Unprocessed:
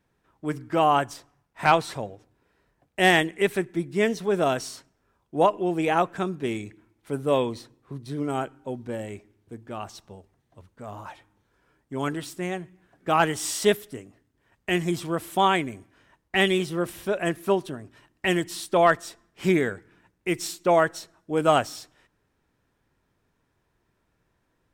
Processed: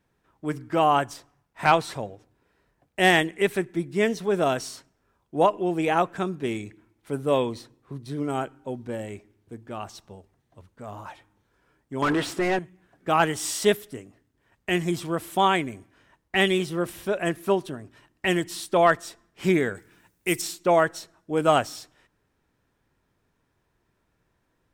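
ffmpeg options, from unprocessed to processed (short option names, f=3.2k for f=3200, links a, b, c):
-filter_complex "[0:a]asettb=1/sr,asplit=3[a][b][c];[a]atrim=end=12.024[d];[b]atrim=start=12.02:end=12.59,asetpts=PTS-STARTPTS,afade=t=in:d=0.004:c=qsin,afade=t=out:st=0.566:d=0.004:c=qsin,asplit=2[e][f];[f]highpass=f=720:p=1,volume=27dB,asoftclip=type=tanh:threshold=-13.5dB[g];[e][g]amix=inputs=2:normalize=0,lowpass=f=1.4k:p=1,volume=-6dB[h];[c]atrim=start=12.586[i];[d][h]acrossfade=d=0.004:c1=hsin:c2=qsin[j];[j][i]acrossfade=d=0.004:c1=qsin:c2=hsin,asplit=3[k][l][m];[k]afade=t=out:st=19.74:d=0.02[n];[l]aemphasis=mode=production:type=75kf,afade=t=in:st=19.74:d=0.02,afade=t=out:st=20.4:d=0.02[o];[m]afade=t=in:st=20.4:d=0.02[p];[n][o][p]amix=inputs=3:normalize=0"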